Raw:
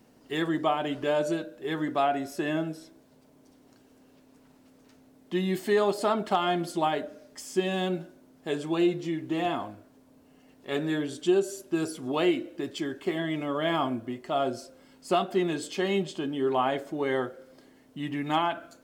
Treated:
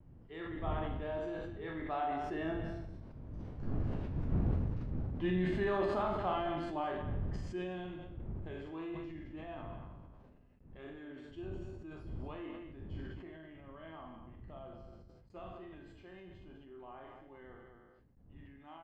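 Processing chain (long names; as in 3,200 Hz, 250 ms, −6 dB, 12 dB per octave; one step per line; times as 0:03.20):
peak hold with a decay on every bin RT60 0.63 s
wind on the microphone 120 Hz −30 dBFS
source passing by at 0:04.15, 12 m/s, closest 4.1 metres
noise gate with hold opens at −59 dBFS
low-pass filter 2,300 Hz 12 dB per octave
low-shelf EQ 350 Hz −2 dB
wave folding −27 dBFS
on a send: loudspeakers that aren't time-aligned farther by 15 metres −6 dB, 72 metres −10 dB
on the sum: level that may fall only so fast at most 26 dB per second
level +3.5 dB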